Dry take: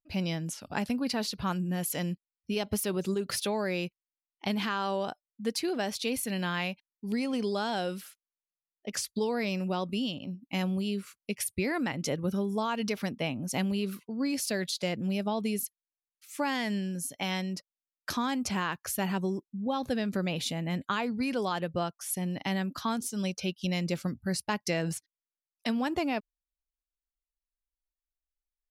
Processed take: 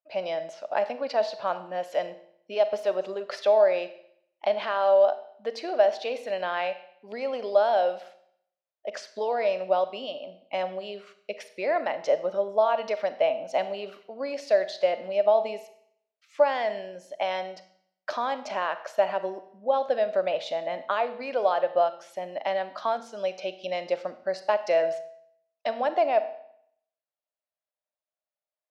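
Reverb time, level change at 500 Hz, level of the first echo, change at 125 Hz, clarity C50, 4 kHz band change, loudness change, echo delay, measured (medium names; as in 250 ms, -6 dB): 0.65 s, +11.0 dB, no echo, under -15 dB, 13.0 dB, -3.5 dB, +5.0 dB, no echo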